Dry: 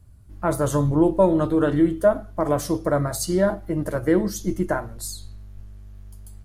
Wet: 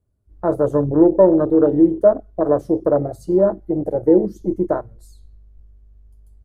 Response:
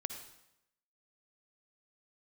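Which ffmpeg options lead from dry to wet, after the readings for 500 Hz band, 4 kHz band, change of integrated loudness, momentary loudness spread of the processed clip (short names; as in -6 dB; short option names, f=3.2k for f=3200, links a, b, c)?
+6.0 dB, under -20 dB, +5.0 dB, 10 LU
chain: -af "afwtdn=0.0631,equalizer=f=440:t=o:w=1.7:g=13.5,volume=-5dB"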